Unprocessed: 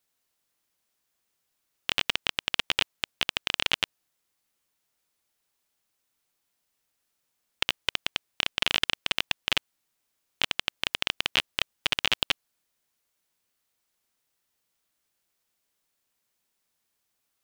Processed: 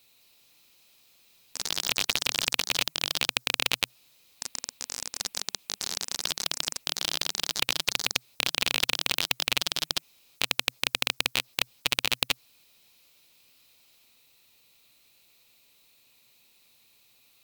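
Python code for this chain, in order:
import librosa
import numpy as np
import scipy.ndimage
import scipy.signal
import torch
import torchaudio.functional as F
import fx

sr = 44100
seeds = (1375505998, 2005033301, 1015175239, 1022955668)

y = fx.graphic_eq_31(x, sr, hz=(125, 250, 500, 1600, 2500, 4000, 16000), db=(7, 4, 3, -7, 11, 12, 8))
y = fx.echo_pitch(y, sr, ms=203, semitones=4, count=3, db_per_echo=-6.0)
y = fx.spectral_comp(y, sr, ratio=2.0)
y = F.gain(torch.from_numpy(y), -5.0).numpy()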